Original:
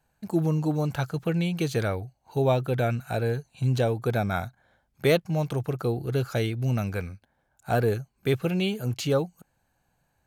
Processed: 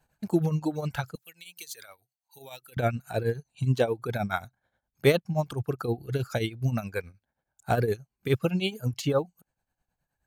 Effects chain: 1.15–2.77 s: pre-emphasis filter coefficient 0.97; reverb removal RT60 1.9 s; tremolo triangle 9.5 Hz, depth 80%; trim +4 dB

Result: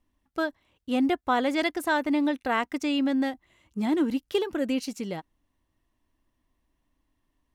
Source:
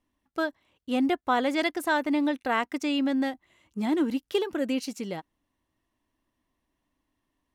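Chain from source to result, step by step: bass shelf 77 Hz +11.5 dB

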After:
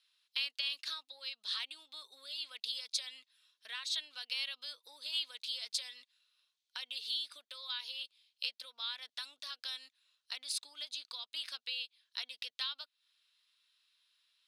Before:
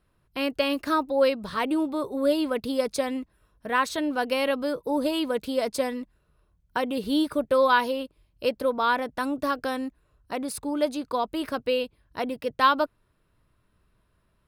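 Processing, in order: compression 10:1, threshold -33 dBFS, peak gain reduction 18.5 dB; ladder band-pass 4.3 kHz, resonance 50%; trim +17.5 dB

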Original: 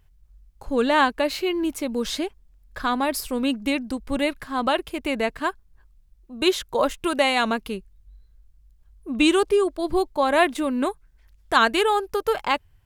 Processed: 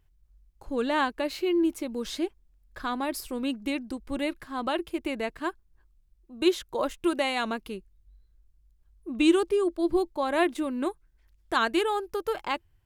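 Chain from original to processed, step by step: peaking EQ 340 Hz +10 dB 0.22 oct; trim -7.5 dB

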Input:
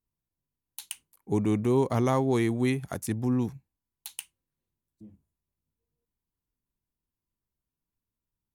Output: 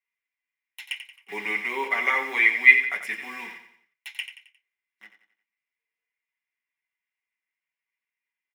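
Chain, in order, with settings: low-pass 2.9 kHz 6 dB/octave; in parallel at -6 dB: bit crusher 7-bit; on the sum: resonant high-pass 2.2 kHz, resonance Q 6.4; feedback delay 89 ms, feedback 42%, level -10 dB; reverberation RT60 0.15 s, pre-delay 3 ms, DRR -2 dB; trim -4 dB

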